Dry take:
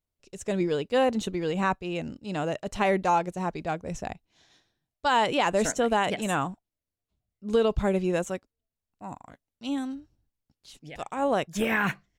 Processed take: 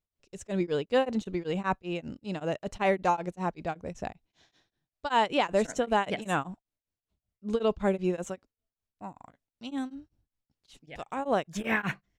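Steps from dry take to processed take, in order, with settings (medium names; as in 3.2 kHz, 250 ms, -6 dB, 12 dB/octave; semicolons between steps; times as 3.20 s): treble shelf 8.9 kHz -10 dB; tremolo of two beating tones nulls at 5.2 Hz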